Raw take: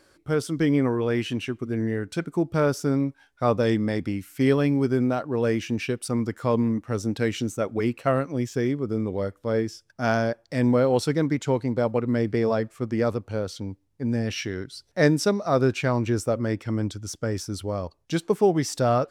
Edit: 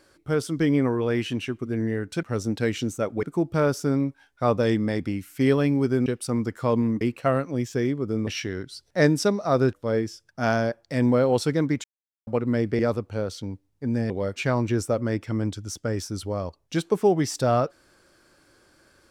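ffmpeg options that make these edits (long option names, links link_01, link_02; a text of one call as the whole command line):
ffmpeg -i in.wav -filter_complex "[0:a]asplit=12[link_01][link_02][link_03][link_04][link_05][link_06][link_07][link_08][link_09][link_10][link_11][link_12];[link_01]atrim=end=2.232[link_13];[link_02]atrim=start=6.818:end=7.822[link_14];[link_03]atrim=start=2.228:end=5.062[link_15];[link_04]atrim=start=5.868:end=6.822[link_16];[link_05]atrim=start=7.818:end=9.082[link_17];[link_06]atrim=start=14.278:end=15.742[link_18];[link_07]atrim=start=9.338:end=11.45,asetpts=PTS-STARTPTS,afade=type=out:start_time=2.108:duration=0.004:curve=hsin[link_19];[link_08]atrim=start=11.45:end=11.88,asetpts=PTS-STARTPTS,volume=0[link_20];[link_09]atrim=start=11.88:end=12.402,asetpts=PTS-STARTPTS,afade=type=in:duration=0.004:curve=hsin[link_21];[link_10]atrim=start=12.968:end=14.282[link_22];[link_11]atrim=start=9.078:end=9.342[link_23];[link_12]atrim=start=15.738[link_24];[link_13][link_14]acrossfade=duration=0.004:curve1=hsin:curve2=hsin[link_25];[link_25][link_15]acrossfade=duration=0.004:curve1=hsin:curve2=hsin[link_26];[link_26][link_16]acrossfade=duration=0.004:curve1=hsin:curve2=hsin[link_27];[link_27][link_17]acrossfade=duration=0.004:curve1=hsin:curve2=hsin[link_28];[link_28][link_18]acrossfade=duration=0.004:curve1=hsin:curve2=hsin[link_29];[link_19][link_20][link_21]concat=n=3:v=0:a=1[link_30];[link_29][link_30]acrossfade=duration=0.004:curve1=hsin:curve2=hsin[link_31];[link_31][link_22]acrossfade=duration=0.004:curve1=hsin:curve2=hsin[link_32];[link_32][link_23]acrossfade=duration=0.004:curve1=hsin:curve2=hsin[link_33];[link_33][link_24]acrossfade=duration=0.004:curve1=hsin:curve2=hsin" out.wav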